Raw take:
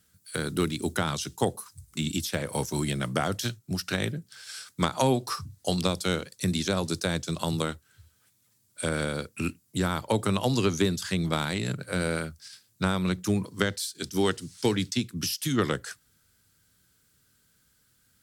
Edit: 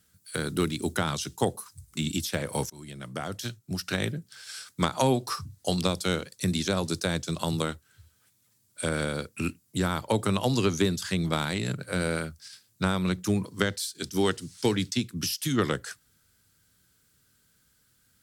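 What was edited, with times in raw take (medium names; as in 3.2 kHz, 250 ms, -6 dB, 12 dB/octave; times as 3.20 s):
2.70–3.99 s: fade in linear, from -22.5 dB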